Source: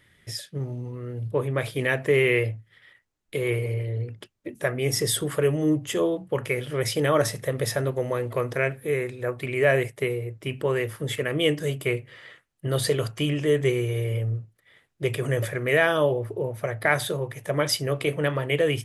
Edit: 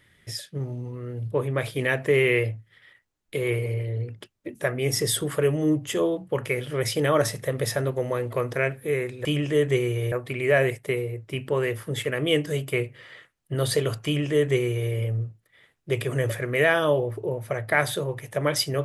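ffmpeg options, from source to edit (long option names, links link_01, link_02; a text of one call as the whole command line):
ffmpeg -i in.wav -filter_complex "[0:a]asplit=3[link_01][link_02][link_03];[link_01]atrim=end=9.252[link_04];[link_02]atrim=start=13.178:end=14.052[link_05];[link_03]atrim=start=9.248[link_06];[link_04][link_05]acrossfade=duration=0.004:curve1=hsin:curve2=hsin[link_07];[link_07][link_06]acrossfade=duration=0.004:curve1=hsin:curve2=hsin" out.wav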